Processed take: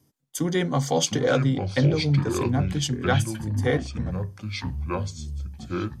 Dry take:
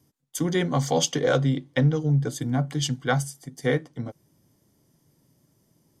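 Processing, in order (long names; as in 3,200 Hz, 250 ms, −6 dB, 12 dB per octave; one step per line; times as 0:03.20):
delay with pitch and tempo change per echo 544 ms, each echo −6 semitones, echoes 2, each echo −6 dB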